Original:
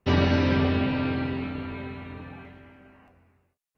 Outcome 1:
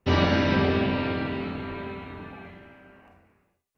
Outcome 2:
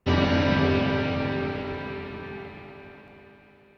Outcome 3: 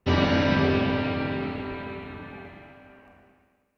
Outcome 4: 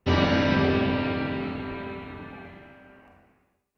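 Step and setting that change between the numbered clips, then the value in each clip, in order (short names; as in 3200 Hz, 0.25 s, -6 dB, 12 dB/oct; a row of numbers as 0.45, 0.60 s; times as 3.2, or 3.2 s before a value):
Schroeder reverb, RT60: 0.35, 4.3, 1.6, 0.79 s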